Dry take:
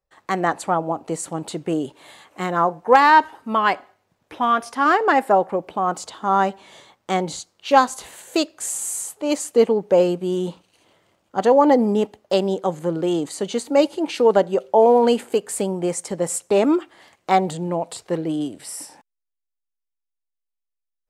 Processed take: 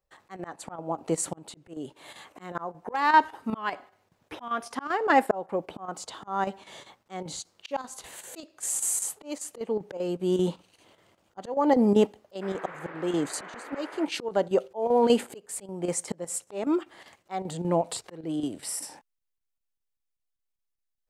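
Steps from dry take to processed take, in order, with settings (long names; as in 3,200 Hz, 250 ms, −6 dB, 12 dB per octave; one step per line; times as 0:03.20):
volume swells 482 ms
square-wave tremolo 5.1 Hz, depth 60%, duty 85%
0:12.41–0:14.04: noise in a band 320–1,900 Hz −43 dBFS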